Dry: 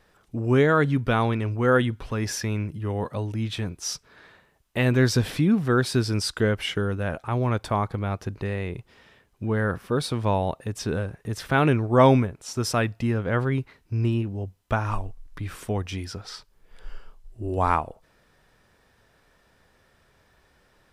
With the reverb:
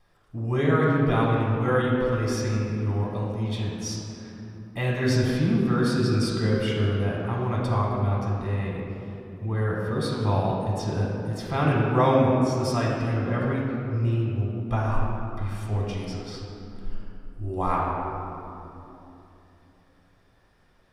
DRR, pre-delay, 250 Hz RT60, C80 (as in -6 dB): -4.0 dB, 3 ms, 4.3 s, 0.5 dB